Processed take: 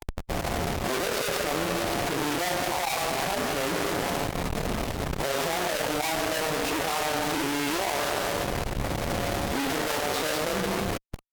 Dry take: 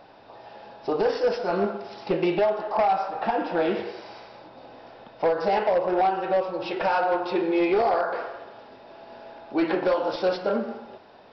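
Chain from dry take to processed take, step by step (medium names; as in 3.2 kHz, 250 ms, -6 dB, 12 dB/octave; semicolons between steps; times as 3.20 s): Schmitt trigger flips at -42 dBFS; formant-preserving pitch shift -3 st; Chebyshev shaper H 7 -18 dB, 8 -28 dB, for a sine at -14.5 dBFS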